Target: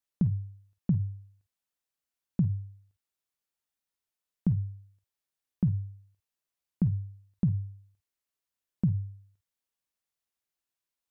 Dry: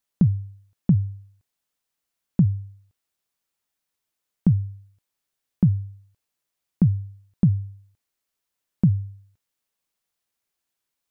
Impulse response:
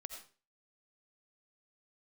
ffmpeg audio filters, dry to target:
-filter_complex "[1:a]atrim=start_sample=2205,atrim=end_sample=3528,asetrate=61740,aresample=44100[link_01];[0:a][link_01]afir=irnorm=-1:irlink=0"

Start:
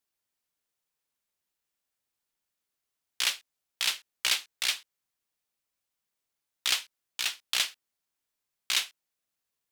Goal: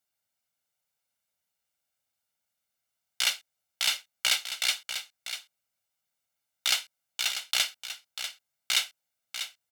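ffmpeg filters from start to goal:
ffmpeg -i in.wav -af "highpass=73,aecho=1:1:1.4:0.58,aecho=1:1:643:0.335" out.wav

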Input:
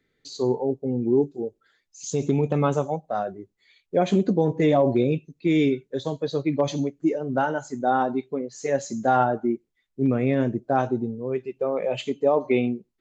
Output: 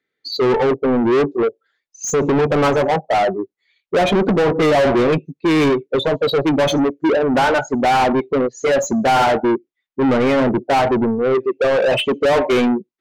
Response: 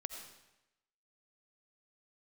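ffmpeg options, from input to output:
-filter_complex "[0:a]afftdn=noise_reduction=27:noise_floor=-32,asplit=2[link_01][link_02];[link_02]highpass=frequency=720:poles=1,volume=32dB,asoftclip=type=tanh:threshold=-8dB[link_03];[link_01][link_03]amix=inputs=2:normalize=0,lowpass=frequency=3100:poles=1,volume=-6dB"

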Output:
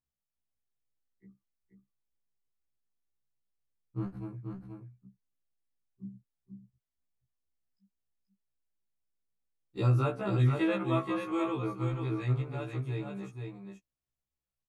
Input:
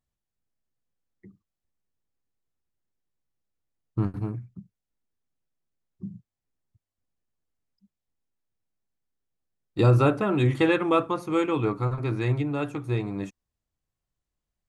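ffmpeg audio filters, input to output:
ffmpeg -i in.wav -filter_complex "[0:a]aecho=1:1:482:0.531,asettb=1/sr,asplit=3[link_01][link_02][link_03];[link_01]atrim=end=10.874[link_04];[link_02]atrim=start=10.87:end=11.56,asetpts=PTS-STARTPTS,afade=type=in:duration=0.004:curve=qsin,afade=type=out:start_time=0.686:duration=0.004:curve=qsin,aeval=exprs='val(0)+0.0112*sin(2*PI*1100*n/s)':channel_layout=same[link_05];[link_03]atrim=start=11.556[link_06];[link_04][link_05]acrossfade=duration=0.004:curve1=hsin:curve2=qsin[link_07];[link_07][link_06]acrossfade=duration=0.004:curve1=qsin:curve2=hsin,afftfilt=real='re*1.73*eq(mod(b,3),0)':imag='im*1.73*eq(mod(b,3),0)':win_size=2048:overlap=0.75,volume=-7dB" out.wav

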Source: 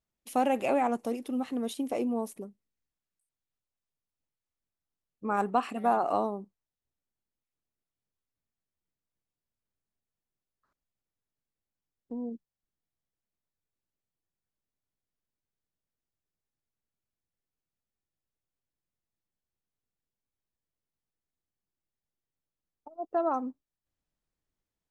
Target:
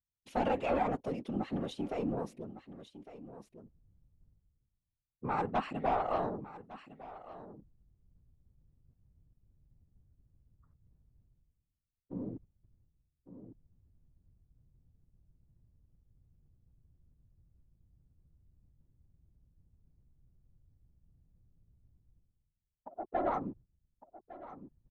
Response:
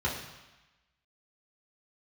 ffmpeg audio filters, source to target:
-af "anlmdn=0.000251,aeval=exprs='0.237*(cos(1*acos(clip(val(0)/0.237,-1,1)))-cos(1*PI/2))+0.0299*(cos(5*acos(clip(val(0)/0.237,-1,1)))-cos(5*PI/2))+0.00376*(cos(6*acos(clip(val(0)/0.237,-1,1)))-cos(6*PI/2))+0.0133*(cos(8*acos(clip(val(0)/0.237,-1,1)))-cos(8*PI/2))':channel_layout=same,afftfilt=real='hypot(re,im)*cos(2*PI*random(0))':imag='hypot(re,im)*sin(2*PI*random(1))':win_size=512:overlap=0.75,aecho=1:1:1156:0.0708,areverse,acompressor=mode=upward:threshold=-39dB:ratio=2.5,areverse,lowpass=4400,volume=-1dB"

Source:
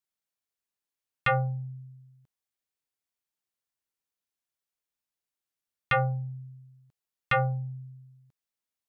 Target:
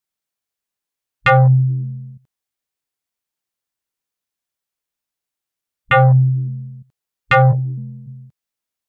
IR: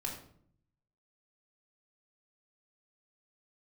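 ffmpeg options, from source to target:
-filter_complex "[0:a]afwtdn=0.0112,asplit=3[link_01][link_02][link_03];[link_01]afade=type=out:start_time=7.51:duration=0.02[link_04];[link_02]highpass=frequency=160:width=0.5412,highpass=frequency=160:width=1.3066,afade=type=in:start_time=7.51:duration=0.02,afade=type=out:start_time=8.06:duration=0.02[link_05];[link_03]afade=type=in:start_time=8.06:duration=0.02[link_06];[link_04][link_05][link_06]amix=inputs=3:normalize=0,alimiter=level_in=27dB:limit=-1dB:release=50:level=0:latency=1,volume=-5.5dB"

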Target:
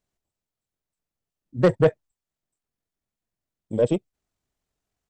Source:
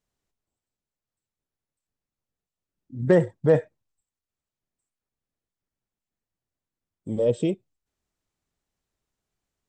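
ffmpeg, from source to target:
ffmpeg -i in.wav -af "aeval=exprs='0.447*(cos(1*acos(clip(val(0)/0.447,-1,1)))-cos(1*PI/2))+0.00447*(cos(4*acos(clip(val(0)/0.447,-1,1)))-cos(4*PI/2))+0.112*(cos(5*acos(clip(val(0)/0.447,-1,1)))-cos(5*PI/2))+0.0708*(cos(7*acos(clip(val(0)/0.447,-1,1)))-cos(7*PI/2))+0.00398*(cos(8*acos(clip(val(0)/0.447,-1,1)))-cos(8*PI/2))':channel_layout=same,atempo=1.9,equalizer=frequency=680:width_type=o:width=0.31:gain=3" out.wav

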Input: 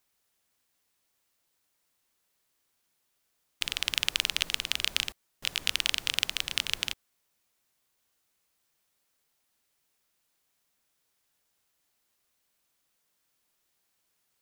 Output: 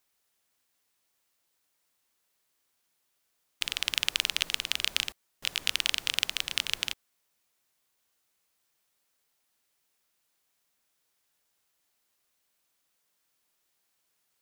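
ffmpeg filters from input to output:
ffmpeg -i in.wav -af "lowshelf=frequency=230:gain=-4.5" out.wav

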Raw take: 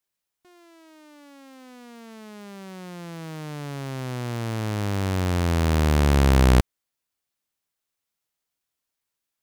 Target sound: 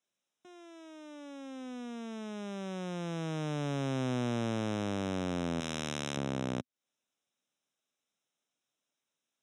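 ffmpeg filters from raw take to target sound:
ffmpeg -i in.wav -filter_complex "[0:a]asettb=1/sr,asplit=3[link_01][link_02][link_03];[link_01]atrim=end=5.604[link_04];[link_02]atrim=start=5.6:end=6.17,asetpts=PTS-STARTPTS,afade=type=in:duration=0.004:curve=qsin,afade=type=out:start_time=0.566:duration=0.004:curve=qsin,tiltshelf=frequency=1400:gain=-7.5[link_05];[link_03]atrim=start=6.166[link_06];[link_04][link_05]acrossfade=duration=0.004:curve1=hsin:curve2=qsin[link_07];[link_07][link_06]acrossfade=duration=0.004:curve1=qsin:curve2=hsin,acompressor=threshold=-29dB:ratio=16,asuperstop=centerf=4500:order=12:qfactor=3.7,highpass=frequency=130:width=0.5412,highpass=frequency=130:width=1.3066,equalizer=frequency=250:width_type=q:width=4:gain=5,equalizer=frequency=570:width_type=q:width=4:gain=4,equalizer=frequency=1000:width_type=q:width=4:gain=-3,equalizer=frequency=1900:width_type=q:width=4:gain=-5,equalizer=frequency=4200:width_type=q:width=4:gain=6,equalizer=frequency=7800:width_type=q:width=4:gain=-4,lowpass=frequency=8500:width=0.5412,lowpass=frequency=8500:width=1.3066" out.wav

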